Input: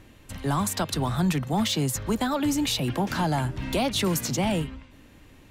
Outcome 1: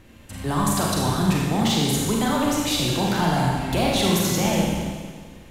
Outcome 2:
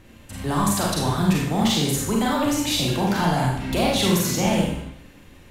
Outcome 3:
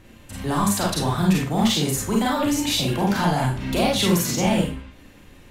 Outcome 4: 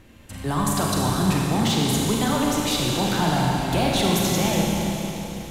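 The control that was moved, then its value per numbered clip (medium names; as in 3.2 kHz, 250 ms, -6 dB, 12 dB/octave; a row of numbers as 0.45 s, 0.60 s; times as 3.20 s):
Schroeder reverb, RT60: 1.7 s, 0.72 s, 0.33 s, 3.8 s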